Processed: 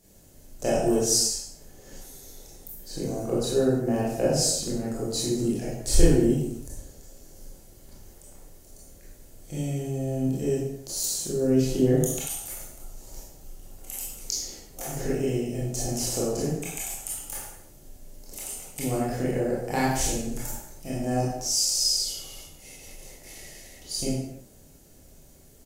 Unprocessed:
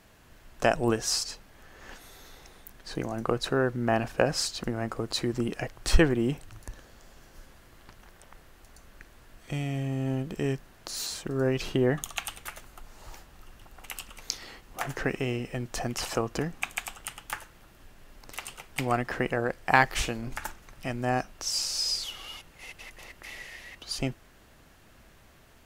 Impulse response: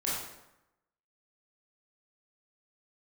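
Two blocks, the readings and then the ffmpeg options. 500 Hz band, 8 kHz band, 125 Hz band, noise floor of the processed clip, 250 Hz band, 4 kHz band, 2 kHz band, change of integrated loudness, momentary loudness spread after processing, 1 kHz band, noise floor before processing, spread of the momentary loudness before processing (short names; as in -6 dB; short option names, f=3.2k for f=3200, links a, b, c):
+3.5 dB, +9.0 dB, +3.5 dB, -52 dBFS, +4.5 dB, +2.5 dB, -9.0 dB, +3.5 dB, 22 LU, -4.0 dB, -56 dBFS, 19 LU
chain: -filter_complex "[0:a]firequalizer=gain_entry='entry(550,0);entry(1100,-16);entry(6600,7)':delay=0.05:min_phase=1[a];[1:a]atrim=start_sample=2205,afade=t=out:st=0.41:d=0.01,atrim=end_sample=18522[b];[a][b]afir=irnorm=-1:irlink=0,volume=-2.5dB"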